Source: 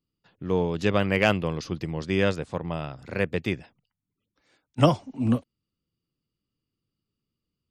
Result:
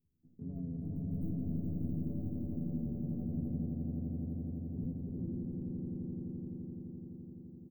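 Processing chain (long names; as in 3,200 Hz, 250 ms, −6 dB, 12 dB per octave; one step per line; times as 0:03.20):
wavefolder on the positive side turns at −13 dBFS
inverse Chebyshev band-stop filter 1,100–5,800 Hz, stop band 80 dB
hum removal 46.25 Hz, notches 29
dynamic equaliser 270 Hz, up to −5 dB, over −50 dBFS, Q 7.8
downward compressor 16 to 1, threshold −37 dBFS, peak gain reduction 18 dB
brickwall limiter −41.5 dBFS, peak gain reduction 11 dB
pitch-shifted copies added −3 semitones −5 dB, +7 semitones −2 dB
double-tracking delay 12 ms −4 dB
on a send: echo that builds up and dies away 85 ms, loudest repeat 8, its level −6 dB
on the sum: level +1.5 dB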